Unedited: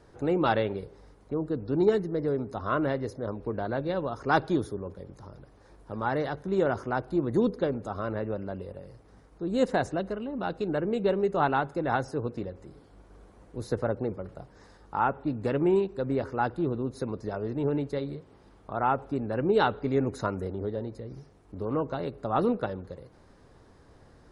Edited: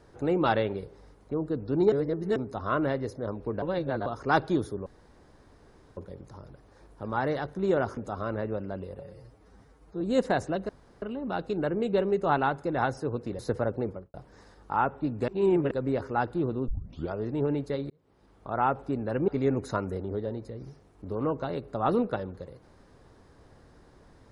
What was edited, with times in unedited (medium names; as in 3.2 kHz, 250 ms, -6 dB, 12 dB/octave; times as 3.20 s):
1.92–2.36 s: reverse
3.62–4.06 s: reverse
4.86 s: insert room tone 1.11 s
6.86–7.75 s: delete
8.77–9.45 s: stretch 1.5×
10.13 s: insert room tone 0.33 s
12.50–13.62 s: delete
14.12–14.37 s: studio fade out
15.51–15.94 s: reverse
16.91 s: tape start 0.45 s
18.13–18.76 s: fade in
19.51–19.78 s: delete